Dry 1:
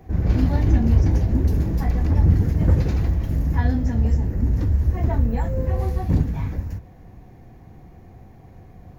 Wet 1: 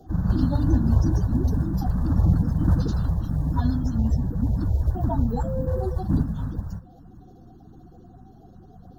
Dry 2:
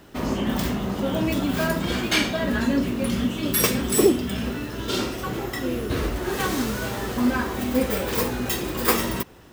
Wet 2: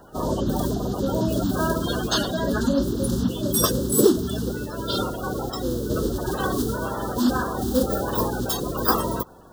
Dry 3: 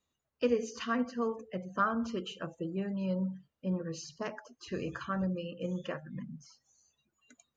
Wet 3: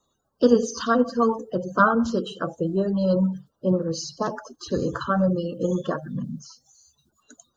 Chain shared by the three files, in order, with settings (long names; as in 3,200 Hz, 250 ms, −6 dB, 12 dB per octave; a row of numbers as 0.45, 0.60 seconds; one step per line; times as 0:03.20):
spectral magnitudes quantised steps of 30 dB
Chebyshev band-stop filter 1,400–3,600 Hz, order 2
loudness normalisation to −24 LKFS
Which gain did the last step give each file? −1.5, +2.5, +13.5 decibels